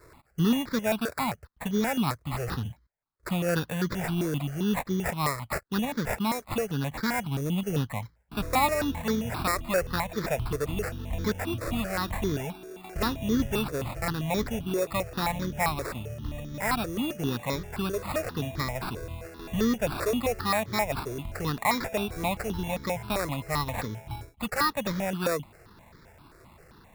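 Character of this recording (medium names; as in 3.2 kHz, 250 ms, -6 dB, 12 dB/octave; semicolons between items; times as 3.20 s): aliases and images of a low sample rate 3.1 kHz, jitter 0%; notches that jump at a steady rate 7.6 Hz 820–2700 Hz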